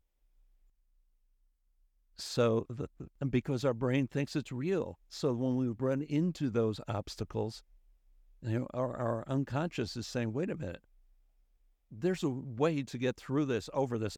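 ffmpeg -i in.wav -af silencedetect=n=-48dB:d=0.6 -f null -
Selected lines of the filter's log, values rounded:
silence_start: 0.00
silence_end: 2.19 | silence_duration: 2.19
silence_start: 7.59
silence_end: 8.43 | silence_duration: 0.83
silence_start: 10.77
silence_end: 11.92 | silence_duration: 1.15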